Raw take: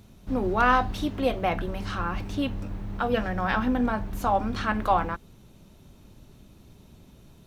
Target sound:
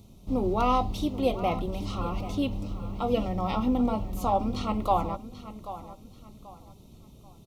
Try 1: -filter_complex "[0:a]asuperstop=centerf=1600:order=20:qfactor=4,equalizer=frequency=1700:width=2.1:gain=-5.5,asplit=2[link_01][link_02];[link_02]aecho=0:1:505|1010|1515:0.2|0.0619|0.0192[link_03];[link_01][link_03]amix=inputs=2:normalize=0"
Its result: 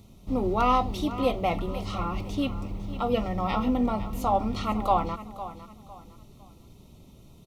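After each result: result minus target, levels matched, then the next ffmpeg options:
echo 280 ms early; 2,000 Hz band +3.5 dB
-filter_complex "[0:a]asuperstop=centerf=1600:order=20:qfactor=4,equalizer=frequency=1700:width=2.1:gain=-5.5,asplit=2[link_01][link_02];[link_02]aecho=0:1:785|1570|2355:0.2|0.0619|0.0192[link_03];[link_01][link_03]amix=inputs=2:normalize=0"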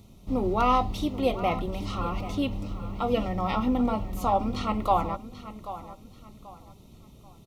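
2,000 Hz band +3.0 dB
-filter_complex "[0:a]asuperstop=centerf=1600:order=20:qfactor=4,equalizer=frequency=1700:width=2.1:gain=-15.5,asplit=2[link_01][link_02];[link_02]aecho=0:1:785|1570|2355:0.2|0.0619|0.0192[link_03];[link_01][link_03]amix=inputs=2:normalize=0"

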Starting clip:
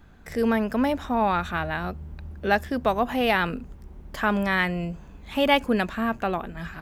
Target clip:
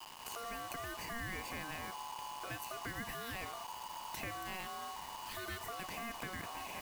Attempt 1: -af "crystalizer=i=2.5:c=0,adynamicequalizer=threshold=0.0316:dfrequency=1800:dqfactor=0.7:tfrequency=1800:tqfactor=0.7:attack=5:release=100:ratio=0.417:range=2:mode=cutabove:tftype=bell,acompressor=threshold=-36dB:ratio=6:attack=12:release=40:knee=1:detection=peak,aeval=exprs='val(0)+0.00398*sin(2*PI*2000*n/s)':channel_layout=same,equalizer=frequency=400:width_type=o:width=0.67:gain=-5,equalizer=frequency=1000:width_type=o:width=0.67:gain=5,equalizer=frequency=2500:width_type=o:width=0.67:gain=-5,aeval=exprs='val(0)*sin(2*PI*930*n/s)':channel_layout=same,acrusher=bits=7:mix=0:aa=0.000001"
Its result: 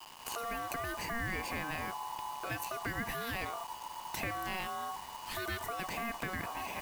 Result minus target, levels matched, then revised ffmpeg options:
downward compressor: peak gain reduction −6 dB
-af "crystalizer=i=2.5:c=0,adynamicequalizer=threshold=0.0316:dfrequency=1800:dqfactor=0.7:tfrequency=1800:tqfactor=0.7:attack=5:release=100:ratio=0.417:range=2:mode=cutabove:tftype=bell,acompressor=threshold=-43dB:ratio=6:attack=12:release=40:knee=1:detection=peak,aeval=exprs='val(0)+0.00398*sin(2*PI*2000*n/s)':channel_layout=same,equalizer=frequency=400:width_type=o:width=0.67:gain=-5,equalizer=frequency=1000:width_type=o:width=0.67:gain=5,equalizer=frequency=2500:width_type=o:width=0.67:gain=-5,aeval=exprs='val(0)*sin(2*PI*930*n/s)':channel_layout=same,acrusher=bits=7:mix=0:aa=0.000001"

